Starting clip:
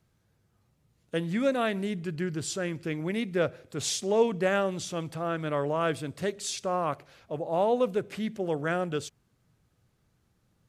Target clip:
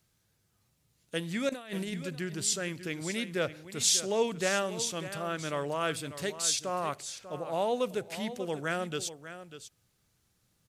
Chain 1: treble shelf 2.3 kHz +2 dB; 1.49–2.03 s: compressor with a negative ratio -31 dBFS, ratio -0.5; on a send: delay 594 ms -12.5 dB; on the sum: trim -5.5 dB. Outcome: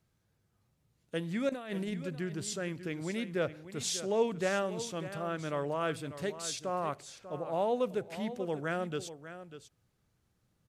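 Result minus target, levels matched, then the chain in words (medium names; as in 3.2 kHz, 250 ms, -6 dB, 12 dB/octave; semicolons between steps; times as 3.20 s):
4 kHz band -5.0 dB
treble shelf 2.3 kHz +13 dB; 1.49–2.03 s: compressor with a negative ratio -31 dBFS, ratio -0.5; on a send: delay 594 ms -12.5 dB; on the sum: trim -5.5 dB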